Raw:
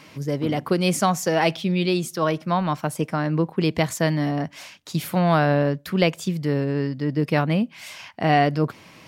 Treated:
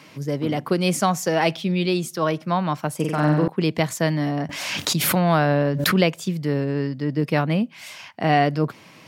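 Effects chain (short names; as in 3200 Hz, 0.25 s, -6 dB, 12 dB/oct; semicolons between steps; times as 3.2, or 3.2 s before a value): HPF 97 Hz 24 dB/oct; 2.95–3.48 flutter echo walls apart 8 m, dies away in 0.95 s; 4.49–6.14 backwards sustainer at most 29 dB/s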